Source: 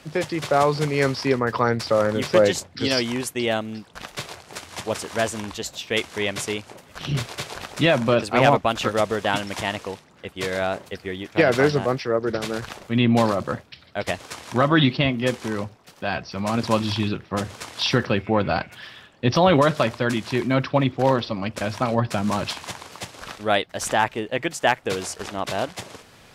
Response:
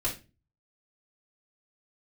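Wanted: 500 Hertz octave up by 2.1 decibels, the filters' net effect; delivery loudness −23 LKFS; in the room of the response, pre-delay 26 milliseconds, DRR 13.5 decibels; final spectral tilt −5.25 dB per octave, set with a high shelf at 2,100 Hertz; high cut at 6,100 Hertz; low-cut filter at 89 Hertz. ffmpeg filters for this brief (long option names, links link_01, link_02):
-filter_complex "[0:a]highpass=89,lowpass=6100,equalizer=frequency=500:width_type=o:gain=3,highshelf=frequency=2100:gain=-7,asplit=2[link_01][link_02];[1:a]atrim=start_sample=2205,adelay=26[link_03];[link_02][link_03]afir=irnorm=-1:irlink=0,volume=-19.5dB[link_04];[link_01][link_04]amix=inputs=2:normalize=0,volume=-0.5dB"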